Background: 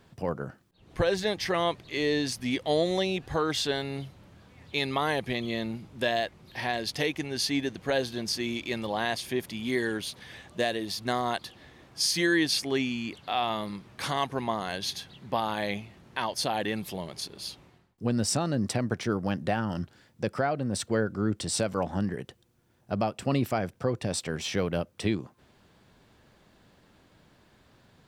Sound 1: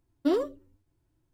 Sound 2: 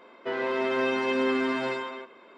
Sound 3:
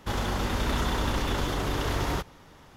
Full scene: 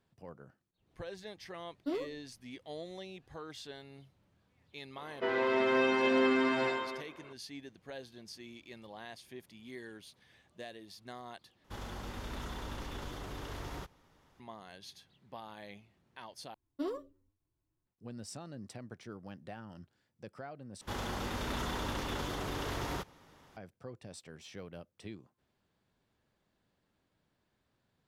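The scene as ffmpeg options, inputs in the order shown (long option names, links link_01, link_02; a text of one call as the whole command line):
ffmpeg -i bed.wav -i cue0.wav -i cue1.wav -i cue2.wav -filter_complex "[1:a]asplit=2[link_01][link_02];[3:a]asplit=2[link_03][link_04];[0:a]volume=-18.5dB[link_05];[link_02]equalizer=frequency=1100:width=7.9:gain=7[link_06];[link_04]lowshelf=frequency=66:gain=-9[link_07];[link_05]asplit=4[link_08][link_09][link_10][link_11];[link_08]atrim=end=11.644[link_12];[link_03]atrim=end=2.76,asetpts=PTS-STARTPTS,volume=-14.5dB[link_13];[link_09]atrim=start=14.396:end=16.544[link_14];[link_06]atrim=end=1.33,asetpts=PTS-STARTPTS,volume=-12dB[link_15];[link_10]atrim=start=17.866:end=20.814[link_16];[link_07]atrim=end=2.76,asetpts=PTS-STARTPTS,volume=-7.5dB[link_17];[link_11]atrim=start=23.566[link_18];[link_01]atrim=end=1.33,asetpts=PTS-STARTPTS,volume=-11dB,afade=type=in:duration=0.004:curve=hsin,afade=type=out:start_time=1.326:duration=0.004:curve=hsin,adelay=1610[link_19];[2:a]atrim=end=2.37,asetpts=PTS-STARTPTS,volume=-2dB,afade=type=in:duration=0.004:curve=hsin,afade=type=out:start_time=2.366:duration=0.004:curve=hsin,adelay=4960[link_20];[link_12][link_13]acrossfade=duration=0.004:curve1=hsin:curve2=hsin[link_21];[link_21][link_14]acrossfade=duration=0.004:curve1=hsin:curve2=hsin[link_22];[link_22][link_15]acrossfade=duration=0.004:curve1=hsin:curve2=hsin[link_23];[link_23][link_16]acrossfade=duration=0.004:curve1=hsin:curve2=hsin[link_24];[link_24][link_17]acrossfade=duration=0.004:curve1=hsin:curve2=hsin[link_25];[link_25][link_18]acrossfade=duration=0.004:curve1=hsin:curve2=hsin[link_26];[link_26][link_19][link_20]amix=inputs=3:normalize=0" out.wav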